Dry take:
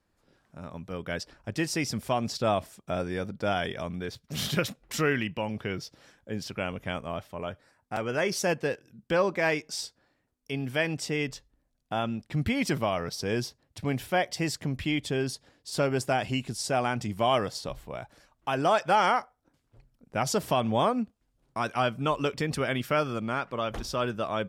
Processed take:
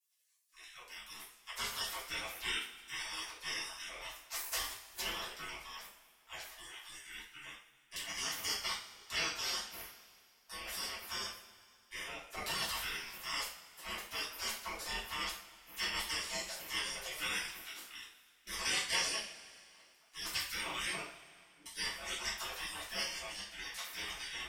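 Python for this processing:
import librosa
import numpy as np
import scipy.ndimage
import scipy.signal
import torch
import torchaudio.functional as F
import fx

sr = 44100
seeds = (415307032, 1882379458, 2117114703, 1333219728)

y = fx.notch(x, sr, hz=1700.0, q=9.3)
y = fx.spec_gate(y, sr, threshold_db=-30, keep='weak')
y = fx.formant_cascade(y, sr, vowel='u', at=(21.02, 21.66))
y = fx.rev_double_slope(y, sr, seeds[0], early_s=0.4, late_s=2.4, knee_db=-19, drr_db=-7.5)
y = y * librosa.db_to_amplitude(3.5)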